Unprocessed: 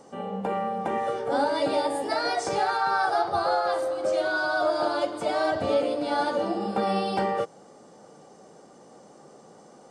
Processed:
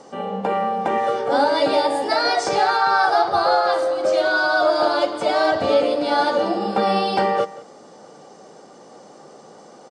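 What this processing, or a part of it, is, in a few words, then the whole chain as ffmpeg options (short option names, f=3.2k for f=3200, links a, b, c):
presence and air boost: -filter_complex "[0:a]lowpass=5.9k,lowshelf=f=190:g=-8,equalizer=f=4.6k:t=o:w=0.77:g=2,highshelf=f=9.2k:g=7,asplit=2[a][b];[b]adelay=180.8,volume=-18dB,highshelf=f=4k:g=-4.07[c];[a][c]amix=inputs=2:normalize=0,volume=7.5dB"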